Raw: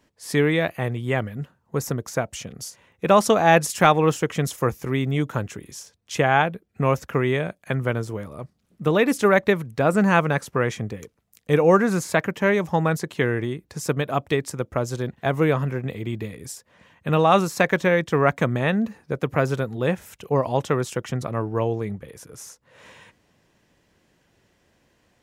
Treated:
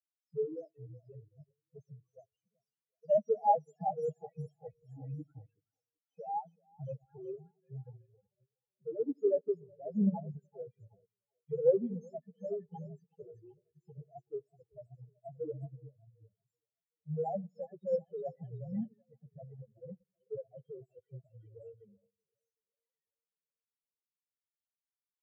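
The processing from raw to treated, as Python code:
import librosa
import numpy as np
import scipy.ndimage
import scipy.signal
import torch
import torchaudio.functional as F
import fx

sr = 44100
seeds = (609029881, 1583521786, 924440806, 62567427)

y = fx.spec_topn(x, sr, count=1)
y = fx.echo_split(y, sr, split_hz=360.0, low_ms=89, high_ms=378, feedback_pct=52, wet_db=-12.0)
y = fx.upward_expand(y, sr, threshold_db=-48.0, expansion=2.5)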